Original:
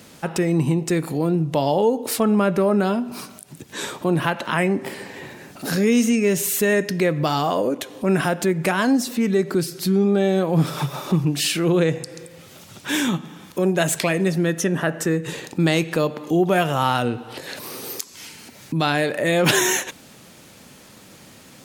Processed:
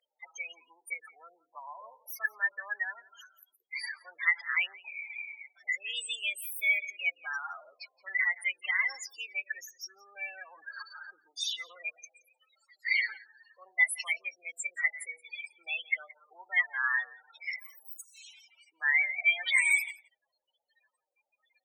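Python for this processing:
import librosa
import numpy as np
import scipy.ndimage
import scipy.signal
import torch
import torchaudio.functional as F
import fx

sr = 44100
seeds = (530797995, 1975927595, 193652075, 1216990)

y = fx.formant_shift(x, sr, semitones=4)
y = fx.spec_topn(y, sr, count=16)
y = fx.ladder_highpass(y, sr, hz=1800.0, resonance_pct=65)
y = y + 10.0 ** (-23.0 / 20.0) * np.pad(y, (int(172 * sr / 1000.0), 0))[:len(y)]
y = y * librosa.db_to_amplitude(5.5)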